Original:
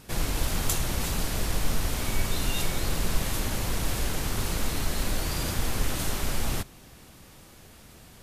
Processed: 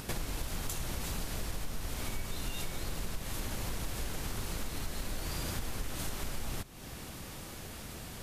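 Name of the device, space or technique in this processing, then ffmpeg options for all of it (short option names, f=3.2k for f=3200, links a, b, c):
upward and downward compression: -af "acompressor=mode=upward:threshold=-47dB:ratio=2.5,acompressor=threshold=-40dB:ratio=5,volume=5.5dB"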